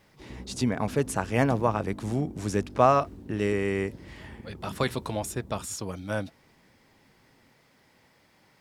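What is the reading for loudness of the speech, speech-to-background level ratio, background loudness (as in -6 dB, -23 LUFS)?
-28.5 LUFS, 16.5 dB, -45.0 LUFS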